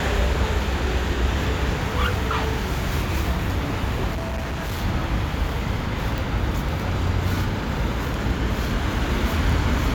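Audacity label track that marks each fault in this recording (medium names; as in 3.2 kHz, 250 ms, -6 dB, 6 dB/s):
4.120000	4.830000	clipped -23.5 dBFS
6.180000	6.180000	pop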